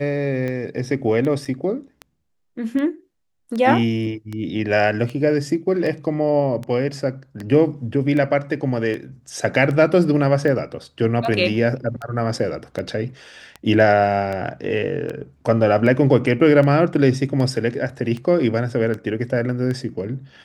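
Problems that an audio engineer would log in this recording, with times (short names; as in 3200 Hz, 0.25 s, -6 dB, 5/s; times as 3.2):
tick 78 rpm -17 dBFS
1.45–1.46 gap 5.2 ms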